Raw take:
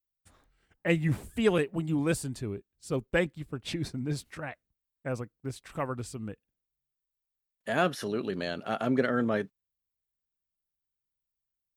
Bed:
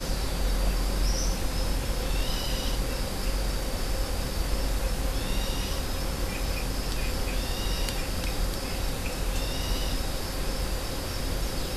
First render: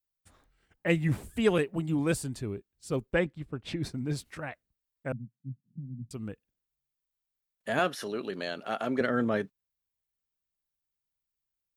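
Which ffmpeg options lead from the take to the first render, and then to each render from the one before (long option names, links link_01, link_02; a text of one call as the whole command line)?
ffmpeg -i in.wav -filter_complex "[0:a]asettb=1/sr,asplit=3[link_01][link_02][link_03];[link_01]atrim=end=3.134[link_04];[link_02]atrim=start=3.13:end=3.83,asetpts=PTS-STARTPTS,afade=type=in:duration=0.004:curve=qsin,afade=type=out:start_time=0.696:duration=0.004:curve=qsin,lowpass=frequency=2900:poles=1[link_05];[link_03]atrim=start=3.826[link_06];[link_04][link_05]acrossfade=duration=0.004:curve1=hsin:curve2=qsin[link_07];[link_07][link_06]acrossfade=duration=0.004:curve1=qsin:curve2=hsin,asettb=1/sr,asplit=3[link_08][link_09][link_10];[link_08]atrim=end=5.124[link_11];[link_09]atrim=start=5.12:end=6.11,asetpts=PTS-STARTPTS,afade=type=in:duration=0.004:curve=qsin,afade=type=out:start_time=0.986:duration=0.004:curve=qsin,asuperpass=centerf=170:order=8:qfactor=1.3[link_12];[link_10]atrim=start=6.106[link_13];[link_11][link_12]acrossfade=duration=0.004:curve1=hsin:curve2=qsin[link_14];[link_14][link_13]acrossfade=duration=0.004:curve1=qsin:curve2=hsin,asettb=1/sr,asplit=3[link_15][link_16][link_17];[link_15]atrim=end=7.794[link_18];[link_16]atrim=start=7.79:end=9.01,asetpts=PTS-STARTPTS,afade=type=in:duration=0.004:curve=qsin,afade=type=out:start_time=1.216:duration=0.004:curve=qsin,highpass=frequency=330:poles=1[link_19];[link_17]atrim=start=9.006[link_20];[link_18][link_19]acrossfade=duration=0.004:curve1=hsin:curve2=qsin[link_21];[link_21][link_20]acrossfade=duration=0.004:curve1=qsin:curve2=hsin" out.wav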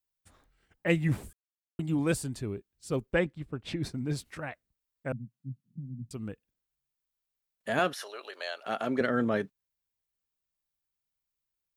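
ffmpeg -i in.wav -filter_complex "[0:a]asettb=1/sr,asplit=3[link_01][link_02][link_03];[link_01]atrim=end=7.934[link_04];[link_02]atrim=start=7.93:end=8.66,asetpts=PTS-STARTPTS,afade=type=in:duration=0.004:curve=qsin,afade=type=out:start_time=0.726:duration=0.004:curve=qsin,highpass=frequency=570:width=0.5412,highpass=frequency=570:width=1.3066[link_05];[link_03]atrim=start=8.656[link_06];[link_04][link_05]acrossfade=duration=0.004:curve1=hsin:curve2=qsin[link_07];[link_07][link_06]acrossfade=duration=0.004:curve1=qsin:curve2=hsin,asplit=3[link_08][link_09][link_10];[link_08]atrim=end=1.33,asetpts=PTS-STARTPTS,afade=type=out:start_time=1.326:duration=0.004:curve=hsin[link_11];[link_09]atrim=start=1.33:end=1.79,asetpts=PTS-STARTPTS,volume=0[link_12];[link_10]atrim=start=1.79,asetpts=PTS-STARTPTS,afade=type=in:duration=0.004:curve=hsin[link_13];[link_11][link_12][link_13]concat=n=3:v=0:a=1" out.wav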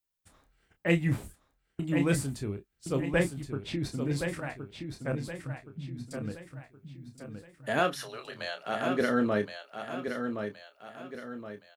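ffmpeg -i in.wav -filter_complex "[0:a]asplit=2[link_01][link_02];[link_02]adelay=29,volume=-8dB[link_03];[link_01][link_03]amix=inputs=2:normalize=0,asplit=2[link_04][link_05];[link_05]aecho=0:1:1070|2140|3210|4280|5350:0.447|0.188|0.0788|0.0331|0.0139[link_06];[link_04][link_06]amix=inputs=2:normalize=0" out.wav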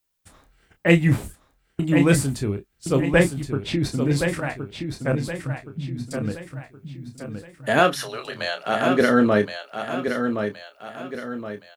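ffmpeg -i in.wav -af "volume=9.5dB" out.wav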